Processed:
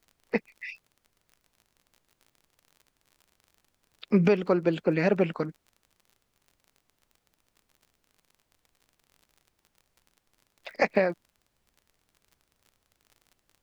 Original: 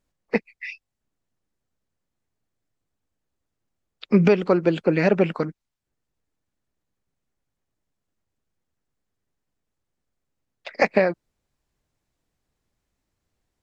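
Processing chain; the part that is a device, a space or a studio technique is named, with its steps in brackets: vinyl LP (crackle 40/s -39 dBFS; pink noise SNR 43 dB); gain -5 dB

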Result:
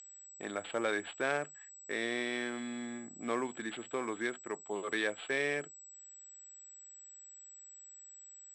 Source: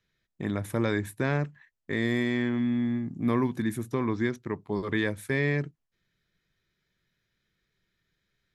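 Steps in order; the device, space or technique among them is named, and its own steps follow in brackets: toy sound module (decimation joined by straight lines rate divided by 6×; pulse-width modulation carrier 7800 Hz; speaker cabinet 690–4700 Hz, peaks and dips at 1000 Hz -10 dB, 1900 Hz -7 dB, 3200 Hz +6 dB); gain +4 dB

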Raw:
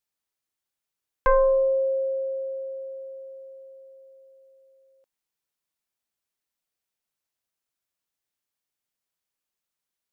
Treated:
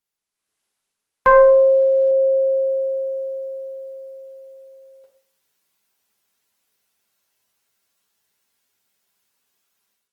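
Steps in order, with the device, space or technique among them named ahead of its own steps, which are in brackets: far-field microphone of a smart speaker (reverb RT60 0.50 s, pre-delay 3 ms, DRR -0.5 dB; HPF 110 Hz 6 dB/oct; AGC gain up to 13 dB; gain -1 dB; Opus 20 kbps 48000 Hz)

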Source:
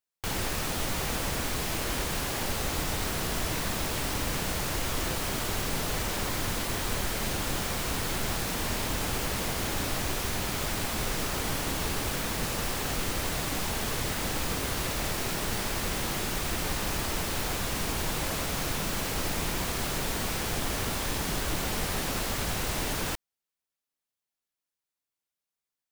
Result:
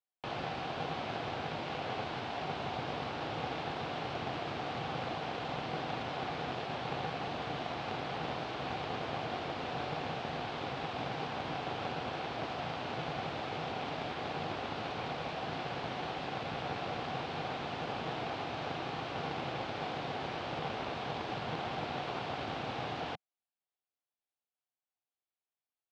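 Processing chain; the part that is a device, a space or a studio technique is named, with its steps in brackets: ring modulator pedal into a guitar cabinet (polarity switched at an audio rate 160 Hz; speaker cabinet 110–3800 Hz, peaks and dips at 190 Hz -9 dB, 740 Hz +9 dB, 1900 Hz -4 dB); gain -6.5 dB

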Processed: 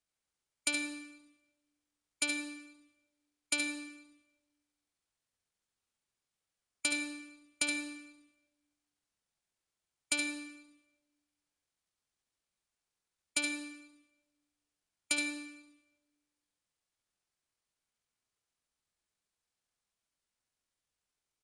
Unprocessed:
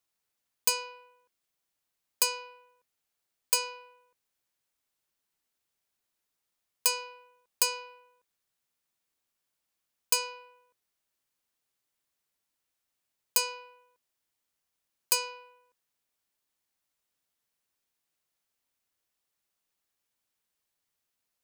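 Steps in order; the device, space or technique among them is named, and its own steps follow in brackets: monster voice (pitch shift -9 st; formant shift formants -3.5 st; low shelf 160 Hz +7 dB; echo 72 ms -6.5 dB; reverb RT60 1.1 s, pre-delay 54 ms, DRR 7.5 dB); gain -7.5 dB

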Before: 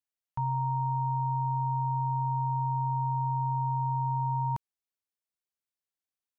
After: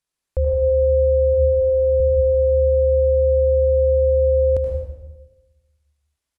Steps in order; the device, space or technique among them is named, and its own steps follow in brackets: 1.33–2 HPF 140 Hz 12 dB/oct; monster voice (pitch shift -10 st; low shelf 190 Hz +5.5 dB; echo 77 ms -9.5 dB; reverb RT60 1.1 s, pre-delay 91 ms, DRR 2 dB); gain +8.5 dB

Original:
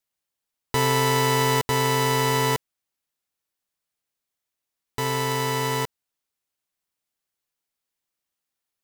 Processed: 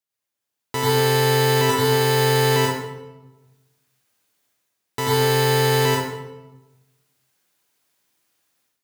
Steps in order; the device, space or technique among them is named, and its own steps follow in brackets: far laptop microphone (reverb RT60 0.95 s, pre-delay 84 ms, DRR -5 dB; HPF 100 Hz; AGC gain up to 14.5 dB); gain -5 dB

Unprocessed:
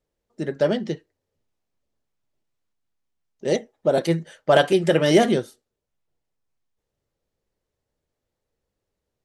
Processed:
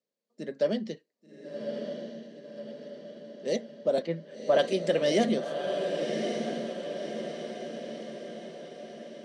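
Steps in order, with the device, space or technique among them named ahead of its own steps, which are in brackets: 4.02–4.59 LPF 2200 Hz 12 dB/oct; television speaker (speaker cabinet 190–8800 Hz, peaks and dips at 220 Hz +6 dB, 340 Hz -6 dB, 550 Hz +4 dB, 850 Hz -7 dB, 1400 Hz -7 dB, 4500 Hz +6 dB); diffused feedback echo 1.128 s, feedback 55%, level -5 dB; gain -8 dB

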